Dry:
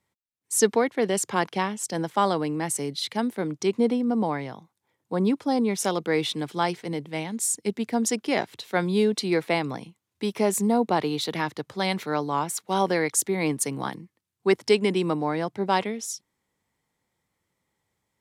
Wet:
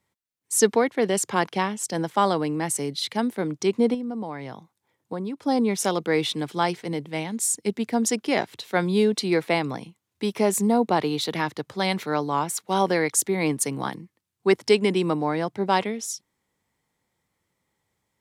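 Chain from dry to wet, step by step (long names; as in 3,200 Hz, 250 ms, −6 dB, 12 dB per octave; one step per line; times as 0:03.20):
0:03.94–0:05.43: downward compressor 6 to 1, threshold −30 dBFS, peak gain reduction 11 dB
level +1.5 dB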